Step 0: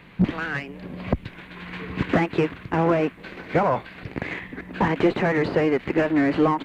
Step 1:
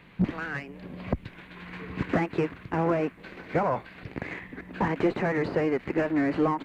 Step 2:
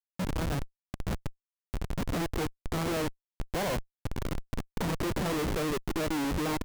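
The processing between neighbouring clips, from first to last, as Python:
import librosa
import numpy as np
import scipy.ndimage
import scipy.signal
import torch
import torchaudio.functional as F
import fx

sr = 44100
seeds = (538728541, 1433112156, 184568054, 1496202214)

y1 = fx.dynamic_eq(x, sr, hz=3300.0, q=2.1, threshold_db=-47.0, ratio=4.0, max_db=-5)
y1 = y1 * 10.0 ** (-5.0 / 20.0)
y2 = fx.env_lowpass(y1, sr, base_hz=2100.0, full_db=-20.5)
y2 = fx.dynamic_eq(y2, sr, hz=1600.0, q=0.91, threshold_db=-41.0, ratio=4.0, max_db=-5)
y2 = fx.schmitt(y2, sr, flips_db=-32.0)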